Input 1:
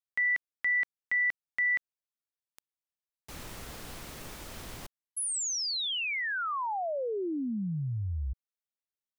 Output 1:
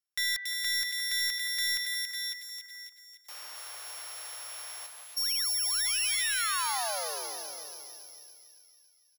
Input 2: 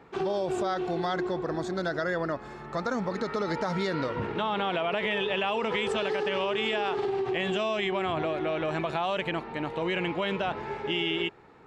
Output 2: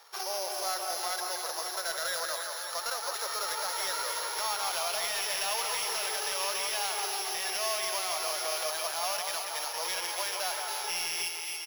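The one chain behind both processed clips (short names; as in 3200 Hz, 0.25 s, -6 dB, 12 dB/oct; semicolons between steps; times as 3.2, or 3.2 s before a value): sample sorter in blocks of 8 samples; Bessel high-pass 950 Hz, order 6; feedback echo 0.55 s, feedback 16%, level -13.5 dB; limiter -21 dBFS; high shelf 7500 Hz +3 dB; on a send: split-band echo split 1900 Hz, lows 0.169 s, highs 0.28 s, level -5 dB; on the sum: soft clip -22 dBFS; gain +2 dB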